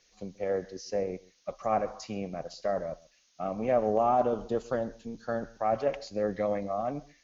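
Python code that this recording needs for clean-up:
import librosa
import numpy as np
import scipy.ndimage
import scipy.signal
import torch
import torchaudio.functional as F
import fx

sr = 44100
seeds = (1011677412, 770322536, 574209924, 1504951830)

y = fx.noise_reduce(x, sr, print_start_s=2.91, print_end_s=3.41, reduce_db=14.0)
y = fx.fix_echo_inverse(y, sr, delay_ms=133, level_db=-22.5)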